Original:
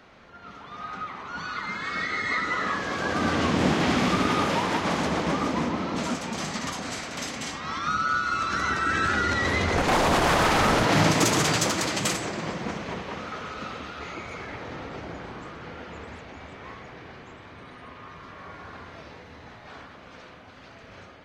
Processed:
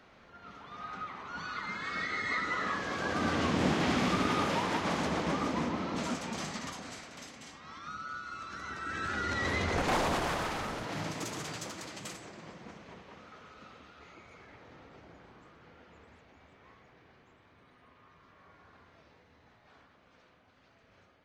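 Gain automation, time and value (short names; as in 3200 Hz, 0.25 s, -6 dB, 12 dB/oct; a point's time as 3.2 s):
6.36 s -6 dB
7.37 s -16 dB
8.62 s -16 dB
9.44 s -7 dB
9.95 s -7 dB
10.74 s -17 dB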